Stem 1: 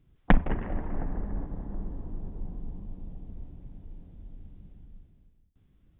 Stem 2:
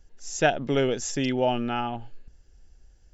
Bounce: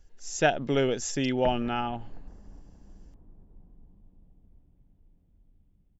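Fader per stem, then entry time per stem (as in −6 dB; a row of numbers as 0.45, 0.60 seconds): −16.5, −1.5 decibels; 1.15, 0.00 seconds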